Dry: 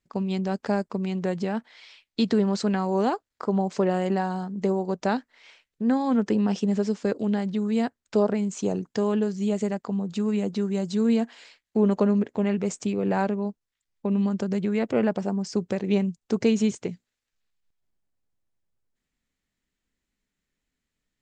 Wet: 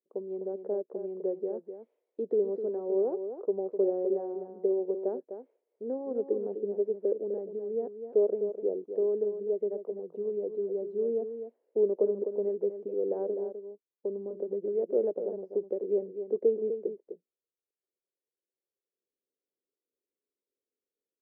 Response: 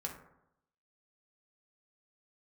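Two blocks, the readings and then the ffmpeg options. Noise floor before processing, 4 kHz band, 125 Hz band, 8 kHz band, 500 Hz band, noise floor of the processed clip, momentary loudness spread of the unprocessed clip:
−84 dBFS, below −40 dB, below −20 dB, below −35 dB, −0.5 dB, below −85 dBFS, 6 LU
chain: -filter_complex "[0:a]asuperpass=centerf=440:order=4:qfactor=2.3,asplit=2[link_01][link_02];[link_02]aecho=0:1:253:0.355[link_03];[link_01][link_03]amix=inputs=2:normalize=0"

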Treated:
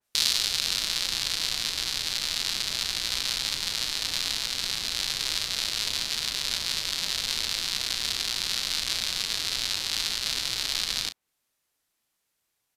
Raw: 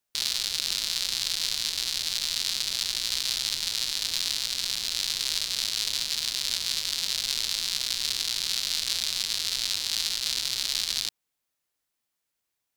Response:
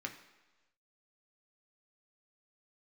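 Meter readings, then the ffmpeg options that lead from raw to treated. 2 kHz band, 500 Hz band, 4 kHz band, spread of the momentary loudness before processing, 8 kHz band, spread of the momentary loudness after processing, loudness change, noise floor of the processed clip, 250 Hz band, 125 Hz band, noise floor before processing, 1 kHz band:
+3.0 dB, +5.5 dB, 0.0 dB, 1 LU, −1.0 dB, 2 LU, 0.0 dB, −79 dBFS, +5.5 dB, +5.5 dB, −82 dBFS, +5.0 dB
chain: -filter_complex "[0:a]aresample=32000,aresample=44100,asplit=2[link_01][link_02];[link_02]adelay=34,volume=-11dB[link_03];[link_01][link_03]amix=inputs=2:normalize=0,adynamicequalizer=threshold=0.00794:dfrequency=2700:dqfactor=0.7:tfrequency=2700:tqfactor=0.7:attack=5:release=100:ratio=0.375:range=3.5:mode=cutabove:tftype=highshelf,volume=5dB"

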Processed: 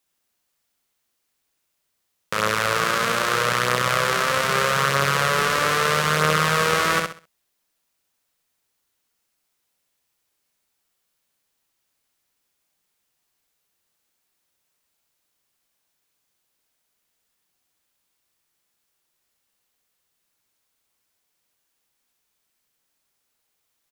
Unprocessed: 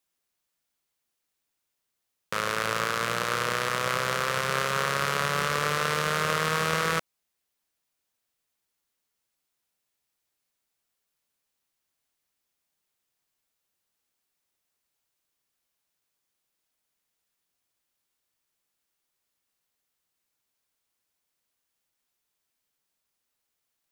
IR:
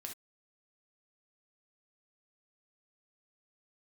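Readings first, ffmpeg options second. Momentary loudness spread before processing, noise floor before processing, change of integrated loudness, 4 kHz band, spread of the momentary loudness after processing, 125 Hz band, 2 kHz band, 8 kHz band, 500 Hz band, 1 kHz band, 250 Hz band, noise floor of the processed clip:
2 LU, −82 dBFS, +6.5 dB, +6.5 dB, 3 LU, +6.5 dB, +6.5 dB, +6.5 dB, +6.5 dB, +6.5 dB, +6.5 dB, −75 dBFS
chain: -af "aecho=1:1:65|130|195|260:0.631|0.177|0.0495|0.0139,volume=5dB"

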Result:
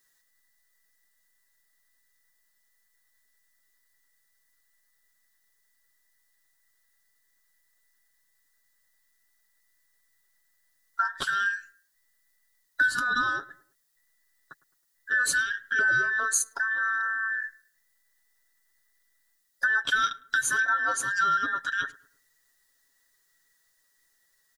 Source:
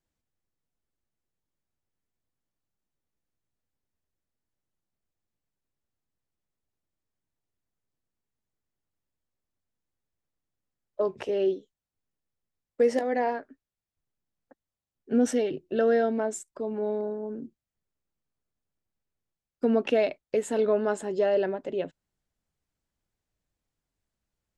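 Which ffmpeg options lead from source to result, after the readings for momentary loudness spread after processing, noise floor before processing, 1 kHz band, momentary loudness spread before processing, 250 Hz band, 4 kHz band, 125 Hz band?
8 LU, below −85 dBFS, +6.0 dB, 11 LU, −19.0 dB, +10.0 dB, can't be measured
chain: -filter_complex "[0:a]afftfilt=real='real(if(between(b,1,1012),(2*floor((b-1)/92)+1)*92-b,b),0)':imag='imag(if(between(b,1,1012),(2*floor((b-1)/92)+1)*92-b,b),0)*if(between(b,1,1012),-1,1)':win_size=2048:overlap=0.75,aecho=1:1:7.3:0.6,acompressor=threshold=-36dB:ratio=2.5,aexciter=amount=3.5:drive=4.6:freq=3800,asplit=2[link_01][link_02];[link_02]adelay=106,lowpass=frequency=1400:poles=1,volume=-19dB,asplit=2[link_03][link_04];[link_04]adelay=106,lowpass=frequency=1400:poles=1,volume=0.44,asplit=2[link_05][link_06];[link_06]adelay=106,lowpass=frequency=1400:poles=1,volume=0.44[link_07];[link_03][link_05][link_07]amix=inputs=3:normalize=0[link_08];[link_01][link_08]amix=inputs=2:normalize=0,volume=8dB"

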